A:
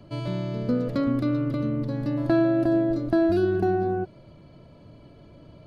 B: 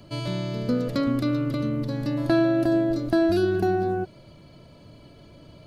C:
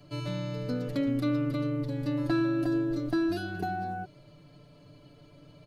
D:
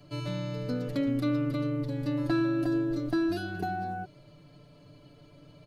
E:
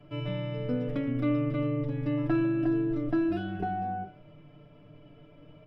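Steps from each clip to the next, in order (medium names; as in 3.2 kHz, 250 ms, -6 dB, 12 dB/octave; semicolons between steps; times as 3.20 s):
treble shelf 2.8 kHz +11.5 dB
comb 6.8 ms, depth 89%; trim -8.5 dB
no audible change
Savitzky-Golay filter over 25 samples; reverberation RT60 0.35 s, pre-delay 4 ms, DRR 6.5 dB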